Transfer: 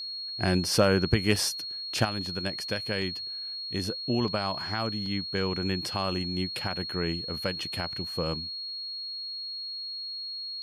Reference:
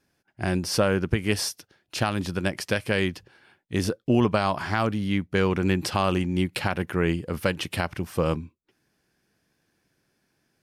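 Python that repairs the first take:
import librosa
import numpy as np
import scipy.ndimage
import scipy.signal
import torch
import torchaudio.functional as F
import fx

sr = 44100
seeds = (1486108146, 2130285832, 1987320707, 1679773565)

y = fx.fix_declip(x, sr, threshold_db=-12.0)
y = fx.notch(y, sr, hz=4300.0, q=30.0)
y = fx.fix_interpolate(y, sr, at_s=(1.36, 3.02, 4.28, 5.06), length_ms=1.9)
y = fx.gain(y, sr, db=fx.steps((0.0, 0.0), (2.05, 7.0)))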